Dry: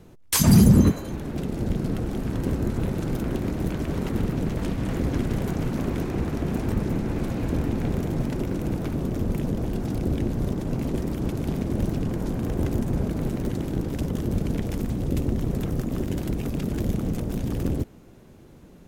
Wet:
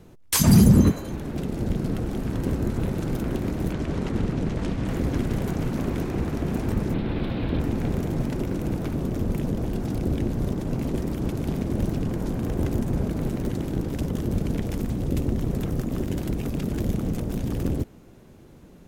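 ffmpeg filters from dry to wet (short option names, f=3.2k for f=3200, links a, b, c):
-filter_complex "[0:a]asettb=1/sr,asplit=3[a][b][c];[a]atrim=end=3.734[d];[b]atrim=start=3.73:end=4.87,asetpts=PTS-STARTPTS,afade=t=in:d=0.004:c=qsin,afade=t=out:st=1.136:d=0.004:c=qsin,lowpass=7.8k[e];[c]atrim=start=4.866[f];[d][e]acrossfade=d=0.004:c1=hsin:c2=qsin[g];[g][f]acrossfade=d=0.004:c1=qsin:c2=hsin,asettb=1/sr,asplit=3[h][i][j];[h]atrim=end=6.944[k];[i]atrim=start=6.94:end=7.6,asetpts=PTS-STARTPTS,afade=t=in:d=0.004:c=qsin,afade=t=out:st=0.656:d=0.004:c=qsin,highshelf=f=5k:t=q:w=3:g=-11.5[l];[j]atrim=start=7.596[m];[k][l]acrossfade=d=0.004:c1=hsin:c2=qsin[n];[n][m]acrossfade=d=0.004:c1=qsin:c2=hsin"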